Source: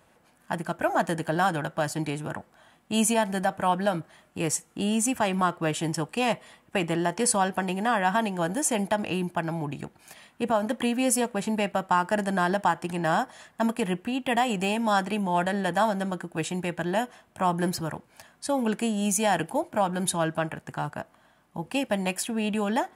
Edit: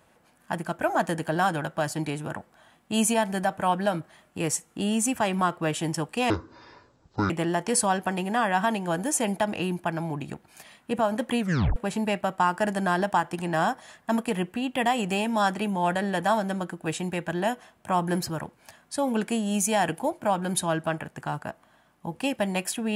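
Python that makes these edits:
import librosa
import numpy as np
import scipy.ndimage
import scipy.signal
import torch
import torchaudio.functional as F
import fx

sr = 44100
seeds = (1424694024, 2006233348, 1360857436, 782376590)

y = fx.edit(x, sr, fx.speed_span(start_s=6.3, length_s=0.51, speed=0.51),
    fx.tape_stop(start_s=10.9, length_s=0.37), tone=tone)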